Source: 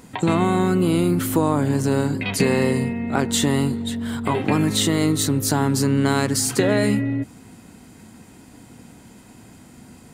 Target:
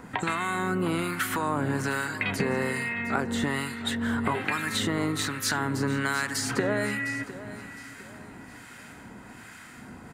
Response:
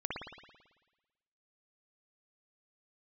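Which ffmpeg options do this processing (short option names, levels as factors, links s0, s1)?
-filter_complex "[0:a]equalizer=f=1600:t=o:w=1.5:g=14.5,acrossover=split=730|6600[s0][s1][s2];[s0]acompressor=threshold=0.0501:ratio=4[s3];[s1]acompressor=threshold=0.0501:ratio=4[s4];[s2]acompressor=threshold=0.0141:ratio=4[s5];[s3][s4][s5]amix=inputs=3:normalize=0,acrossover=split=1100[s6][s7];[s6]aeval=exprs='val(0)*(1-0.7/2+0.7/2*cos(2*PI*1.2*n/s))':c=same[s8];[s7]aeval=exprs='val(0)*(1-0.7/2-0.7/2*cos(2*PI*1.2*n/s))':c=same[s9];[s8][s9]amix=inputs=2:normalize=0,asplit=2[s10][s11];[s11]aecho=0:1:708|1416|2124:0.178|0.0605|0.0206[s12];[s10][s12]amix=inputs=2:normalize=0"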